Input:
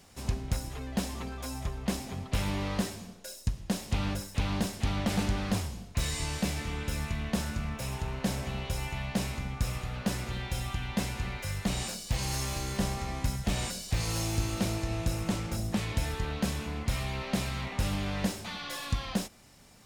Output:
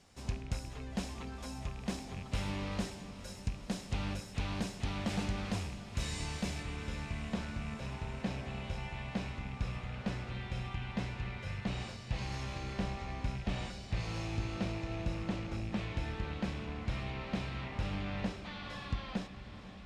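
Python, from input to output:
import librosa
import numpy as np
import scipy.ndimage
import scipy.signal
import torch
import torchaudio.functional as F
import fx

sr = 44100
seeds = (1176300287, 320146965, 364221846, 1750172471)

y = fx.rattle_buzz(x, sr, strikes_db=-34.0, level_db=-33.0)
y = fx.lowpass(y, sr, hz=fx.steps((0.0, 8000.0), (6.63, 3600.0)), slope=12)
y = fx.echo_diffused(y, sr, ms=473, feedback_pct=76, wet_db=-13)
y = y * librosa.db_to_amplitude(-6.0)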